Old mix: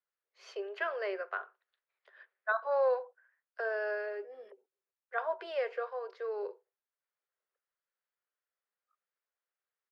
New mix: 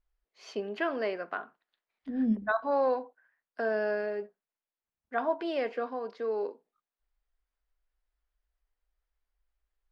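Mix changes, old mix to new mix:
second voice: entry -2.15 s; master: remove rippled Chebyshev high-pass 370 Hz, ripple 6 dB

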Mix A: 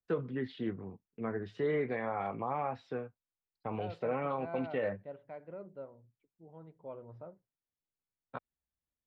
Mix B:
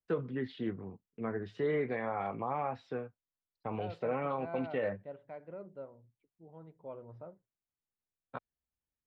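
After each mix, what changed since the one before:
no change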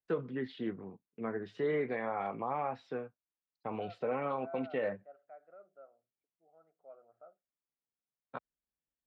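second voice: add two resonant band-passes 960 Hz, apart 0.9 oct; master: add peaking EQ 79 Hz -13.5 dB 0.97 oct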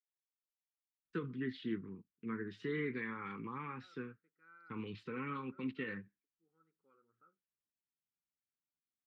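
first voice: entry +1.05 s; master: add Butterworth band-stop 660 Hz, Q 0.75

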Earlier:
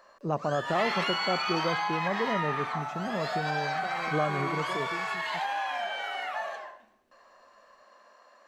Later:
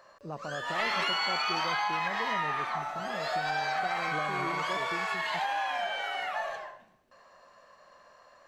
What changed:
first voice -10.0 dB; background: remove Chebyshev high-pass 200 Hz, order 8

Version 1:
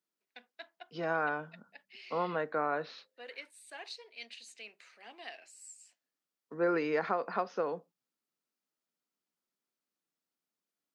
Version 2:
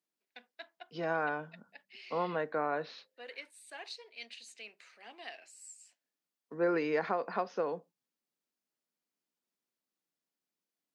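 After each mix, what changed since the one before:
second voice: add peaking EQ 1.3 kHz -5 dB 0.26 oct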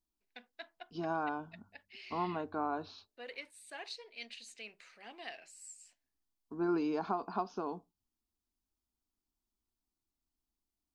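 second voice: add static phaser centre 520 Hz, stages 6; master: remove Bessel high-pass 300 Hz, order 8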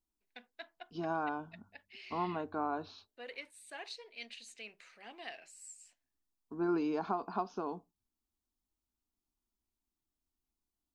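master: add peaking EQ 4.8 kHz -2.5 dB 0.38 oct

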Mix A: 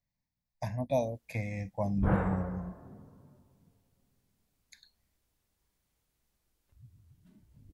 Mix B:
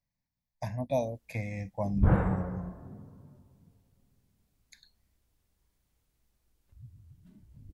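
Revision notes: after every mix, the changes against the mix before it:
background: add bass shelf 210 Hz +7.5 dB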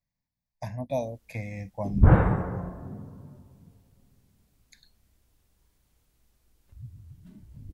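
background +7.0 dB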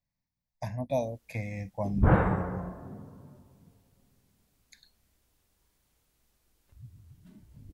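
background: add bass shelf 210 Hz -7.5 dB

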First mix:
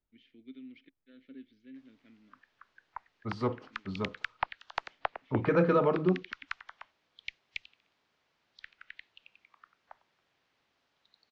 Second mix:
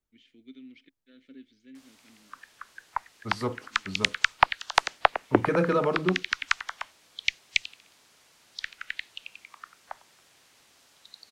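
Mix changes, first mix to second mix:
background +11.5 dB; master: remove distance through air 210 m

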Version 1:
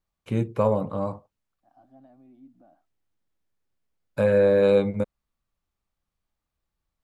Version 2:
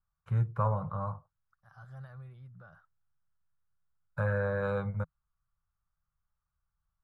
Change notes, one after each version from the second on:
second voice: remove two resonant band-passes 450 Hz, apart 1.3 oct; master: add FFT filter 160 Hz 0 dB, 260 Hz -27 dB, 1.4 kHz +3 dB, 2.4 kHz -18 dB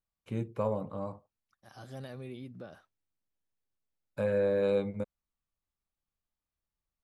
first voice -9.5 dB; master: remove FFT filter 160 Hz 0 dB, 260 Hz -27 dB, 1.4 kHz +3 dB, 2.4 kHz -18 dB

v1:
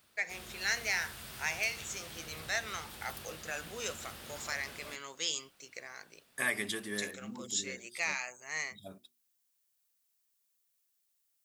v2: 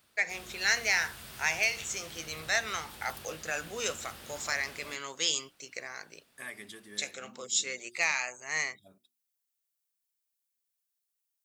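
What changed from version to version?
first voice +5.5 dB; second voice -10.5 dB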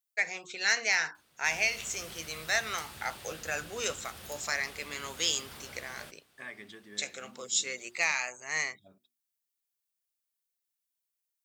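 second voice: add distance through air 120 m; background: entry +1.15 s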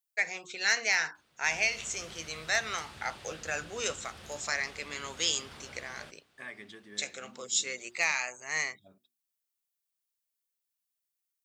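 background: add distance through air 65 m

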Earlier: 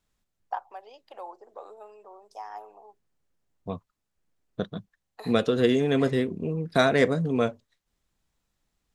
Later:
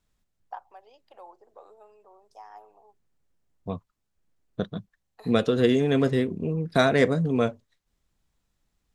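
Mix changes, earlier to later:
first voice -7.0 dB; master: add bass shelf 190 Hz +4 dB

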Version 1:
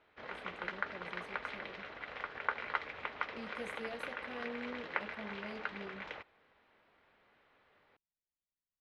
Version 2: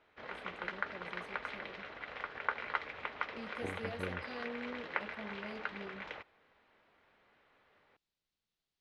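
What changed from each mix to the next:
second voice: unmuted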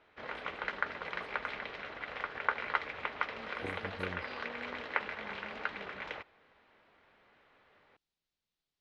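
first voice -7.0 dB; background +3.5 dB

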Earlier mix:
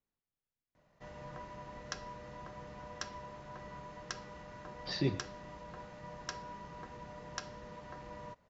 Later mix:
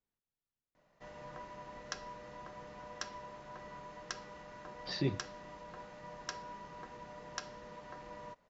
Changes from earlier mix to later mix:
speech: send -9.0 dB; background: add peaking EQ 82 Hz -9 dB 2 oct

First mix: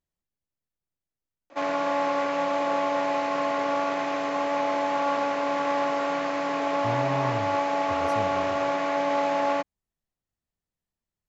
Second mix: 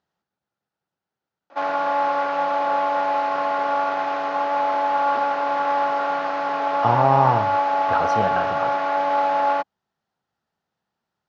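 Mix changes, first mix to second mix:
speech +12.0 dB; master: add cabinet simulation 160–5400 Hz, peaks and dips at 290 Hz -4 dB, 820 Hz +8 dB, 1.4 kHz +8 dB, 2.2 kHz -3 dB

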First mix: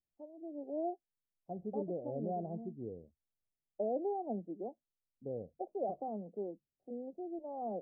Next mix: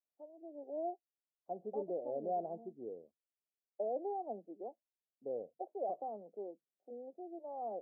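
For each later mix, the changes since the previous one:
second voice +4.0 dB; master: add high-pass 460 Hz 12 dB/octave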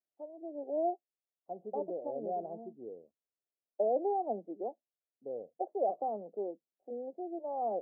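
first voice +7.5 dB

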